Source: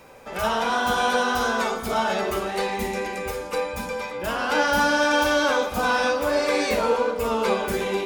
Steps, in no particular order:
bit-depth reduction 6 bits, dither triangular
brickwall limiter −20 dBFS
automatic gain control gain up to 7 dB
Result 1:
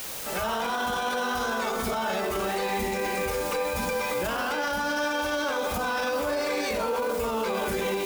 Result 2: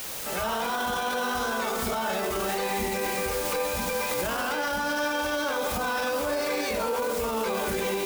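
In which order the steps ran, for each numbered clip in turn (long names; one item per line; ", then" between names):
automatic gain control, then bit-depth reduction, then brickwall limiter
bit-depth reduction, then automatic gain control, then brickwall limiter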